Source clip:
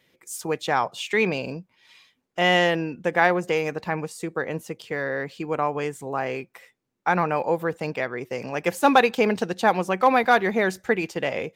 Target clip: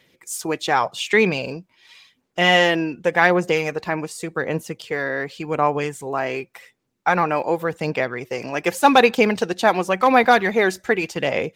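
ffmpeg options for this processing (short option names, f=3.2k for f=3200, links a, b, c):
-af "equalizer=f=5k:w=0.44:g=3,aphaser=in_gain=1:out_gain=1:delay=3.1:decay=0.33:speed=0.88:type=sinusoidal,volume=2.5dB"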